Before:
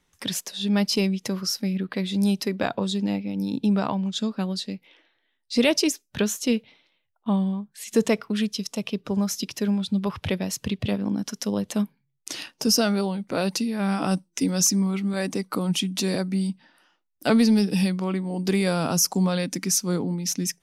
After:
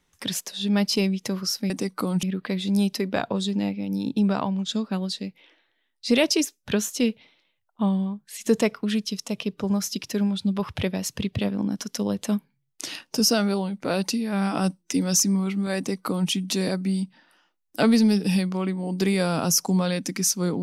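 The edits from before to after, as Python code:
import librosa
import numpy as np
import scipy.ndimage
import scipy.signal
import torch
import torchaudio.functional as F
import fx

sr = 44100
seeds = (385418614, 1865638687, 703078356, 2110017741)

y = fx.edit(x, sr, fx.duplicate(start_s=15.24, length_s=0.53, to_s=1.7), tone=tone)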